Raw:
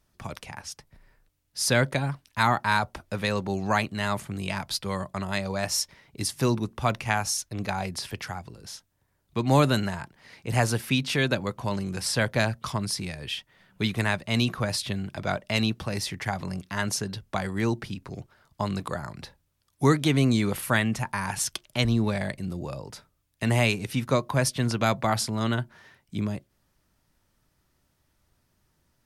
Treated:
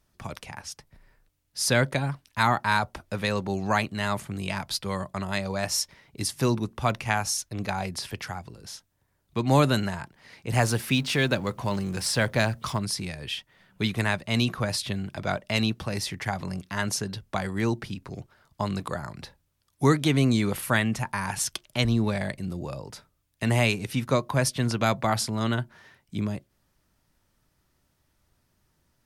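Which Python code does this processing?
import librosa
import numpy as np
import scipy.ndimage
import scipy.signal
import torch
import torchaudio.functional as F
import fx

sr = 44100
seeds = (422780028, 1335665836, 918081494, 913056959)

y = fx.law_mismatch(x, sr, coded='mu', at=(10.53, 12.79))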